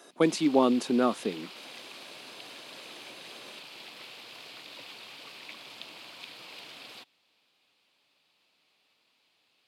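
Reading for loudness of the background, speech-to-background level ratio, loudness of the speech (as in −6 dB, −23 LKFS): −44.5 LKFS, 18.0 dB, −26.5 LKFS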